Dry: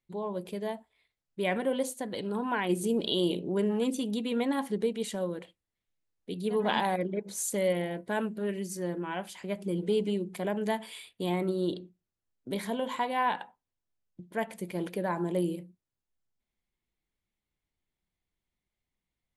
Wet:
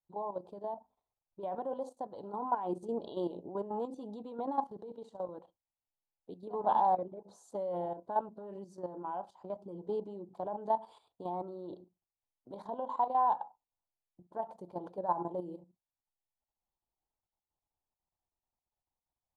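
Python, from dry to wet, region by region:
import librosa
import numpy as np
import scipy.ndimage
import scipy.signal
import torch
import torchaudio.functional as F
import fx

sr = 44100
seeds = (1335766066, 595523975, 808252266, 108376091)

y = fx.chain(x, sr, fx.lowpass(hz=2800.0, slope=6),
    fx.low_shelf(hz=310.0, db=3.5),
    fx.hum_notches(base_hz=50, count=6), at=(0.73, 1.42))
y = fx.chain(y, sr, fx.room_flutter(wall_m=10.2, rt60_s=0.3),
    fx.level_steps(step_db=11), at=(4.64, 5.29))
y = fx.curve_eq(y, sr, hz=(100.0, 210.0, 410.0, 850.0, 1300.0, 2100.0, 4100.0, 8700.0, 13000.0), db=(0, -11, -6, 13, 1, -24, -8, -17, -28))
y = fx.level_steps(y, sr, step_db=11)
y = fx.peak_eq(y, sr, hz=290.0, db=9.5, octaves=1.9)
y = F.gain(torch.from_numpy(y), -7.0).numpy()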